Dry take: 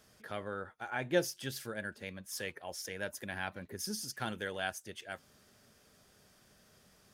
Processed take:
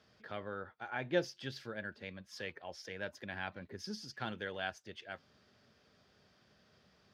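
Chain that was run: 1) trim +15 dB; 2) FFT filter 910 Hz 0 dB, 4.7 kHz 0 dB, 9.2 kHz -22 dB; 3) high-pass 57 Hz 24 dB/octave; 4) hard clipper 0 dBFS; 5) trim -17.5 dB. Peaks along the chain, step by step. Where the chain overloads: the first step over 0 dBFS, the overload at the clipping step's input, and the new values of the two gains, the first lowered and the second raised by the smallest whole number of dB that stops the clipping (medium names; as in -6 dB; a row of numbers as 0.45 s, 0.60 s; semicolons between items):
-1.0 dBFS, -1.0 dBFS, -1.5 dBFS, -1.5 dBFS, -19.0 dBFS; nothing clips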